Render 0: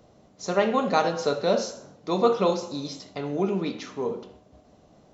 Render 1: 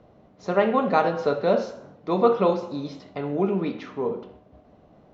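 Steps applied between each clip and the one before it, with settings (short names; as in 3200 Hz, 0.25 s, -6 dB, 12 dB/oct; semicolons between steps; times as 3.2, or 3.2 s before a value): LPF 2500 Hz 12 dB/oct; gain +2 dB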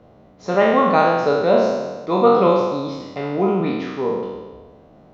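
spectral trails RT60 1.35 s; gain +2.5 dB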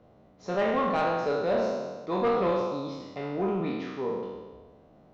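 soft clip -10.5 dBFS, distortion -14 dB; gain -8.5 dB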